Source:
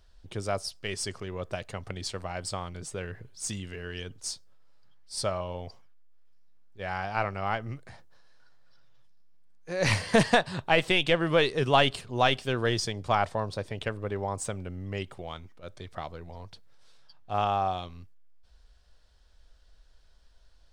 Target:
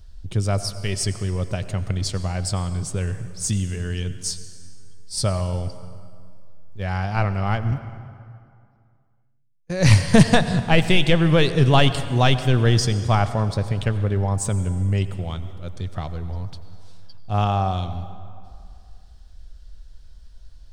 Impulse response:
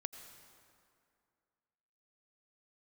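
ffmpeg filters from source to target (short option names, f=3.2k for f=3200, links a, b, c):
-filter_complex "[0:a]asettb=1/sr,asplit=3[a][b][c];[a]atrim=end=5.374[d];[b]atrim=start=5.37:end=6.84,asetpts=PTS-STARTPTS,afade=t=in:d=0.004:c=qsin,afade=t=out:st=1.466:d=0.004:c=qsin,volume=25dB,asoftclip=hard,volume=-25dB[e];[c]atrim=start=6.836[f];[d][e]acrossfade=d=0.004:c1=hsin:c2=qsin[g];[g][f]acrossfade=d=0.004:c1=qsin:c2=hsin,asettb=1/sr,asplit=3[h][i][j];[h]atrim=end=7.714[k];[i]atrim=start=7.71:end=9.7,asetpts=PTS-STARTPTS,afade=t=in:d=0.004:c=qsin,afade=t=out:st=1.986:d=0.004:c=qsin,agate=range=-30dB:threshold=-39dB:ratio=16:detection=peak[l];[j]atrim=start=9.696[m];[k][l]acrossfade=d=0.004:c1=hsin:c2=qsin[n];[n][m]acrossfade=d=0.004:c1=qsin:c2=hsin,bass=f=250:g=14,treble=f=4k:g=6,asplit=2[o][p];[1:a]atrim=start_sample=2205[q];[p][q]afir=irnorm=-1:irlink=0,volume=7.5dB[r];[o][r]amix=inputs=2:normalize=0,volume=-6dB"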